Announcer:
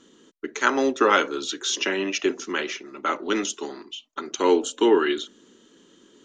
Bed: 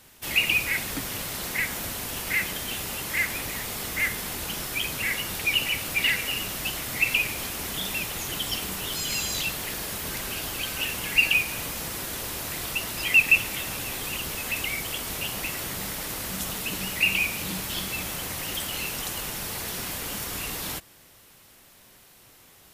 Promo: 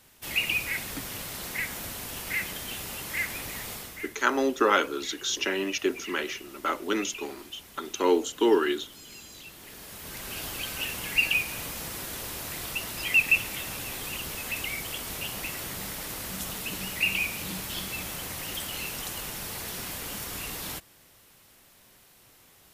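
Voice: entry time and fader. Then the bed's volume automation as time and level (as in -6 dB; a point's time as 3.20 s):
3.60 s, -3.5 dB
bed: 3.73 s -4.5 dB
4.13 s -18 dB
9.43 s -18 dB
10.41 s -3.5 dB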